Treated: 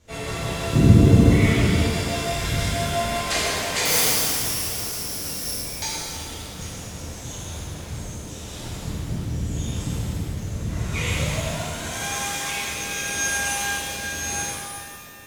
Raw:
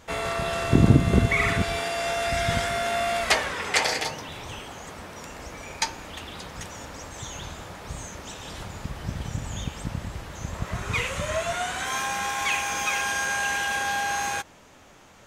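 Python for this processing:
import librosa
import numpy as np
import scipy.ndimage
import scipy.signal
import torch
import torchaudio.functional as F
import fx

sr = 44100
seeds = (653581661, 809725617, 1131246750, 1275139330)

y = fx.peak_eq(x, sr, hz=1300.0, db=-8.0, octaves=2.5)
y = fx.resample_bad(y, sr, factor=8, down='none', up='zero_stuff', at=(3.85, 5.56))
y = fx.rotary_switch(y, sr, hz=6.0, then_hz=0.85, switch_at_s=7.15)
y = fx.rev_shimmer(y, sr, seeds[0], rt60_s=2.1, semitones=7, shimmer_db=-8, drr_db=-10.5)
y = F.gain(torch.from_numpy(y), -4.0).numpy()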